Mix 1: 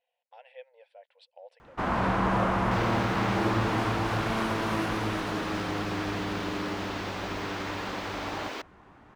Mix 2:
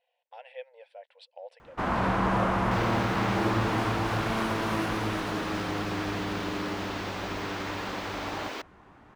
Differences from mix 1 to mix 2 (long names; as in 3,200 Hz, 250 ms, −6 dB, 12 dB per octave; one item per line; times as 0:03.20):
speech +5.0 dB
master: add high-shelf EQ 12,000 Hz +3.5 dB